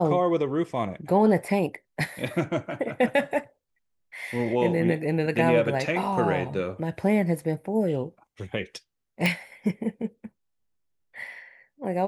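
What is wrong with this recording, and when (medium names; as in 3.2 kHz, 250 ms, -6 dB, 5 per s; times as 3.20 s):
9.26 s: pop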